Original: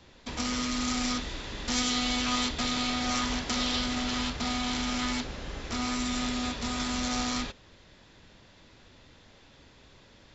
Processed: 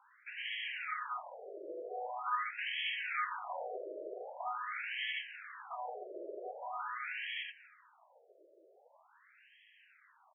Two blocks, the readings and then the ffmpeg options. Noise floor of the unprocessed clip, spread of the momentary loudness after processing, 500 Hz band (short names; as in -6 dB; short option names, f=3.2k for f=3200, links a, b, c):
-57 dBFS, 10 LU, -4.0 dB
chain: -filter_complex "[0:a]bass=f=250:g=10,treble=f=4k:g=1,asplit=2[a][b];[b]adelay=236,lowpass=f=920:p=1,volume=-11dB,asplit=2[c][d];[d]adelay=236,lowpass=f=920:p=1,volume=0.4,asplit=2[e][f];[f]adelay=236,lowpass=f=920:p=1,volume=0.4,asplit=2[g][h];[h]adelay=236,lowpass=f=920:p=1,volume=0.4[i];[a][c][e][g][i]amix=inputs=5:normalize=0,afftfilt=real='re*between(b*sr/1024,460*pow(2400/460,0.5+0.5*sin(2*PI*0.44*pts/sr))/1.41,460*pow(2400/460,0.5+0.5*sin(2*PI*0.44*pts/sr))*1.41)':imag='im*between(b*sr/1024,460*pow(2400/460,0.5+0.5*sin(2*PI*0.44*pts/sr))/1.41,460*pow(2400/460,0.5+0.5*sin(2*PI*0.44*pts/sr))*1.41)':win_size=1024:overlap=0.75"